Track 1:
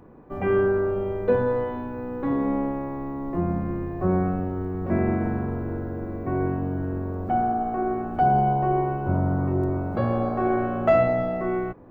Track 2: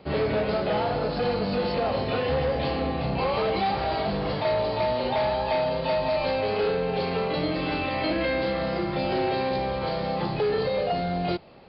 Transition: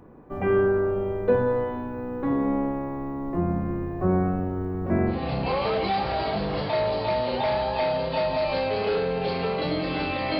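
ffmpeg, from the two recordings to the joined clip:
ffmpeg -i cue0.wav -i cue1.wav -filter_complex "[0:a]apad=whole_dur=10.39,atrim=end=10.39,atrim=end=5.24,asetpts=PTS-STARTPTS[link_01];[1:a]atrim=start=2.78:end=8.11,asetpts=PTS-STARTPTS[link_02];[link_01][link_02]acrossfade=duration=0.18:curve1=tri:curve2=tri" out.wav

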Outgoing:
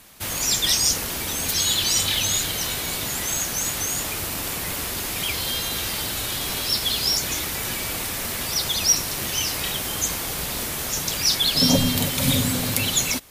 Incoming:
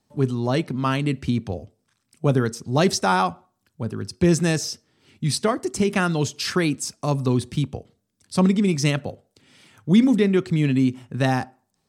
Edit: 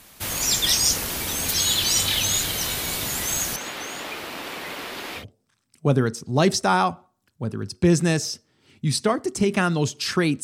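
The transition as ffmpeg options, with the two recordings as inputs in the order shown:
ffmpeg -i cue0.wav -i cue1.wav -filter_complex "[0:a]asettb=1/sr,asplit=3[link_01][link_02][link_03];[link_01]atrim=end=3.564[link_04];[link_02]atrim=start=3.56:end=5.25,asetpts=PTS-STARTPTS,afade=type=in:duration=0.004:curve=qsin,afade=type=out:start_time=1.686:duration=0.004:curve=qsin,acrossover=split=220 4100:gain=0.1 1 0.141[link_05][link_06][link_07];[link_05][link_06][link_07]amix=inputs=3:normalize=0[link_08];[link_03]atrim=start=5.246[link_09];[link_04][link_08]acrossfade=duration=0.004:curve1=hsin:curve2=qsin[link_10];[link_10][link_09]acrossfade=duration=0.004:curve1=qsin:curve2=hsin,apad=whole_dur=10.43,atrim=end=10.43,atrim=end=5.25,asetpts=PTS-STARTPTS[link_11];[1:a]atrim=start=1.54:end=6.82,asetpts=PTS-STARTPTS[link_12];[link_11][link_12]acrossfade=duration=0.1:curve1=tri:curve2=tri" out.wav

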